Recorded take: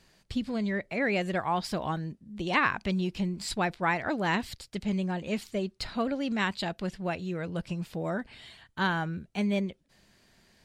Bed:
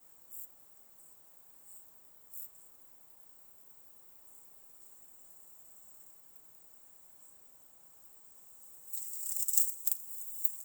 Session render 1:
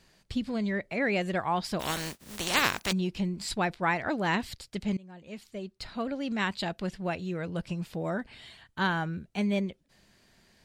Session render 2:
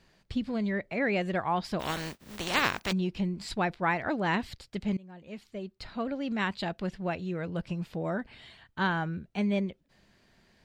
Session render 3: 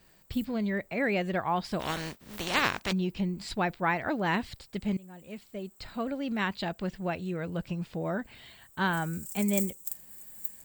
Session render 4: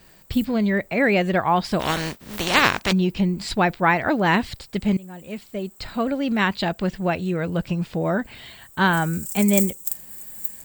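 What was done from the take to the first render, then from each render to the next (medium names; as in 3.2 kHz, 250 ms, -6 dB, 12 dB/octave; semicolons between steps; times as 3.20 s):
1.79–2.91 s: spectral contrast reduction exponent 0.35; 4.97–6.60 s: fade in linear, from -23 dB
peaking EQ 11 kHz -9.5 dB 1.8 oct
add bed -5 dB
trim +9.5 dB; peak limiter -1 dBFS, peak gain reduction 2.5 dB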